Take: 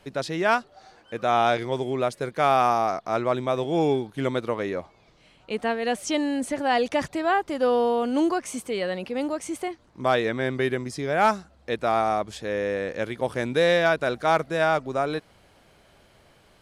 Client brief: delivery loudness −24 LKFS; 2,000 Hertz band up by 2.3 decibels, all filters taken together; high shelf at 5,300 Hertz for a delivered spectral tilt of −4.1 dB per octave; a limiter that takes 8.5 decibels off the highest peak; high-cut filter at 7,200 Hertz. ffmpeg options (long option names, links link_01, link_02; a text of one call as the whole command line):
ffmpeg -i in.wav -af "lowpass=7200,equalizer=frequency=2000:width_type=o:gain=4,highshelf=frequency=5300:gain=-7,volume=4dB,alimiter=limit=-12.5dB:level=0:latency=1" out.wav